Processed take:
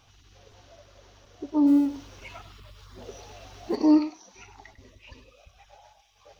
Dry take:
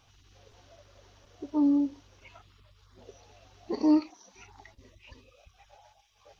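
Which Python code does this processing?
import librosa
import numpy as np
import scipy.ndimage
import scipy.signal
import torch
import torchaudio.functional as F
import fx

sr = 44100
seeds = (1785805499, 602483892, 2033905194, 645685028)

p1 = fx.law_mismatch(x, sr, coded='mu', at=(1.66, 3.75), fade=0.02)
p2 = p1 + fx.echo_single(p1, sr, ms=99, db=-12.0, dry=0)
y = p2 * librosa.db_to_amplitude(3.5)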